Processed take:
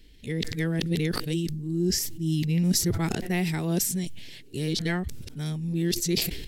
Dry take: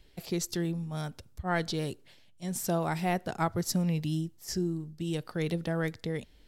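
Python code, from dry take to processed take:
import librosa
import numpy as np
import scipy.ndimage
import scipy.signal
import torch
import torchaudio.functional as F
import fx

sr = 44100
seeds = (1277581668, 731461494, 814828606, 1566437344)

y = np.flip(x).copy()
y = fx.band_shelf(y, sr, hz=880.0, db=-12.0, octaves=1.7)
y = fx.sustainer(y, sr, db_per_s=45.0)
y = y * 10.0 ** (5.0 / 20.0)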